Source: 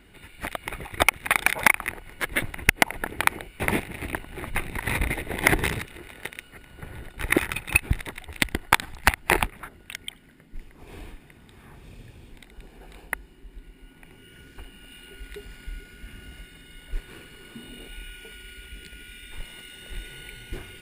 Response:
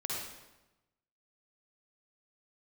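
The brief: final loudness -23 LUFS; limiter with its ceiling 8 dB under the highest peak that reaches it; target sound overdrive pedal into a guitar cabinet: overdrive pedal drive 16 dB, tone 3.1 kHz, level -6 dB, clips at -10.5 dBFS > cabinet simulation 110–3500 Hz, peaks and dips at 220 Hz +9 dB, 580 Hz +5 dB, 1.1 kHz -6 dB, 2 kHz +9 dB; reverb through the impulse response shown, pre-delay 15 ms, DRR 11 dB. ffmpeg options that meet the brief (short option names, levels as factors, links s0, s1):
-filter_complex "[0:a]alimiter=limit=0.251:level=0:latency=1,asplit=2[s0][s1];[1:a]atrim=start_sample=2205,adelay=15[s2];[s1][s2]afir=irnorm=-1:irlink=0,volume=0.188[s3];[s0][s3]amix=inputs=2:normalize=0,asplit=2[s4][s5];[s5]highpass=f=720:p=1,volume=6.31,asoftclip=type=tanh:threshold=0.299[s6];[s4][s6]amix=inputs=2:normalize=0,lowpass=f=3100:p=1,volume=0.501,highpass=110,equalizer=f=220:t=q:w=4:g=9,equalizer=f=580:t=q:w=4:g=5,equalizer=f=1100:t=q:w=4:g=-6,equalizer=f=2000:t=q:w=4:g=9,lowpass=f=3500:w=0.5412,lowpass=f=3500:w=1.3066"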